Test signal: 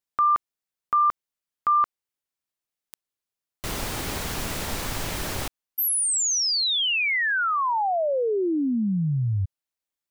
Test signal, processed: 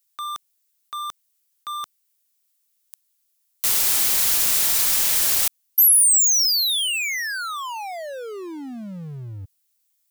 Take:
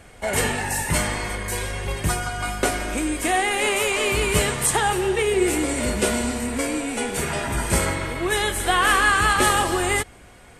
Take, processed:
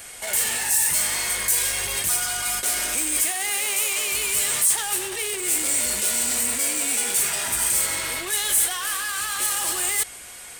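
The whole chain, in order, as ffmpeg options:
-af "lowshelf=f=330:g=-10,areverse,acompressor=threshold=-30dB:ratio=20:attack=6:release=46:knee=1:detection=rms,areverse,aeval=exprs='0.188*(cos(1*acos(clip(val(0)/0.188,-1,1)))-cos(1*PI/2))+0.00133*(cos(4*acos(clip(val(0)/0.188,-1,1)))-cos(4*PI/2))':c=same,asoftclip=type=hard:threshold=-32dB,crystalizer=i=6.5:c=0"

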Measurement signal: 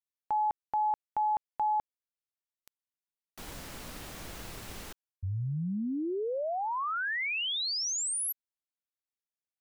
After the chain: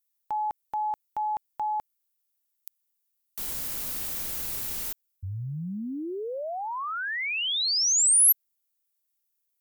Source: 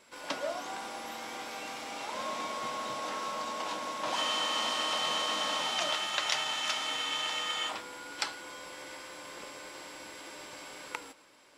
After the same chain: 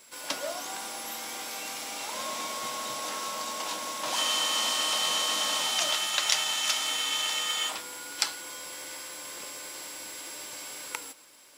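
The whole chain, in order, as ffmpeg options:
-af "aemphasis=mode=production:type=75fm"

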